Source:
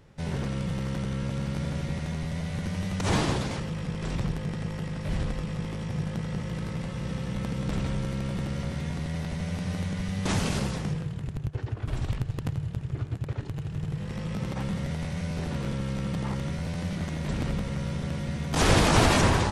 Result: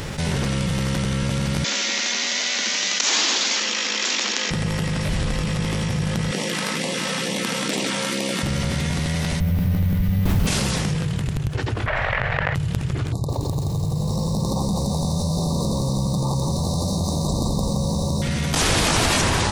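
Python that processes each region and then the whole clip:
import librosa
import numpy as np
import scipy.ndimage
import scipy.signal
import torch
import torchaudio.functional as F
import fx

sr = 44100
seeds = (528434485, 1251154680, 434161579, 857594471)

y = fx.chain(x, sr, fx.steep_highpass(hz=210.0, slope=96),
    fx.tilt_shelf(db=-8.5, hz=1200.0),
    fx.resample_bad(factor=3, down='none', up='filtered'), at=(1.64, 4.51))
y = fx.chain(y, sr, fx.highpass(hz=240.0, slope=24),
    fx.doubler(ms=48.0, db=-13.0),
    fx.filter_lfo_notch(shape='sine', hz=2.2, low_hz=310.0, high_hz=1500.0, q=1.4), at=(6.31, 8.43))
y = fx.chain(y, sr, fx.riaa(side='playback'),
    fx.resample_bad(factor=3, down='none', up='hold'), at=(9.4, 10.47))
y = fx.chain(y, sr, fx.lowpass_res(hz=1900.0, q=3.5),
    fx.low_shelf_res(hz=430.0, db=-10.5, q=3.0),
    fx.env_flatten(amount_pct=100), at=(11.86, 12.55))
y = fx.chain(y, sr, fx.brickwall_bandstop(low_hz=1200.0, high_hz=3600.0),
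    fx.peak_eq(hz=750.0, db=3.0, octaves=1.1),
    fx.echo_crushed(ms=170, feedback_pct=55, bits=10, wet_db=-5.5), at=(13.12, 18.22))
y = fx.high_shelf(y, sr, hz=2100.0, db=9.5)
y = fx.env_flatten(y, sr, amount_pct=70)
y = F.gain(torch.from_numpy(y), -5.5).numpy()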